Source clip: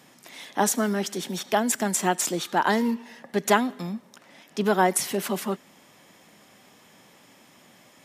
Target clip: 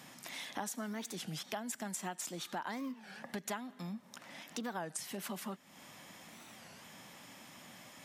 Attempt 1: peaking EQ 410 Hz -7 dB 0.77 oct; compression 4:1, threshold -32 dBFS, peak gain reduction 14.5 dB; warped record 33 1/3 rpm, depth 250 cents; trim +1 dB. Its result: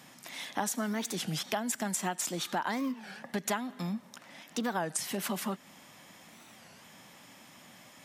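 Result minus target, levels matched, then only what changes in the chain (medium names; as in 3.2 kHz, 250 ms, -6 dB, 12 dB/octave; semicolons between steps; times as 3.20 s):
compression: peak gain reduction -8 dB
change: compression 4:1, threshold -42.5 dBFS, peak gain reduction 22.5 dB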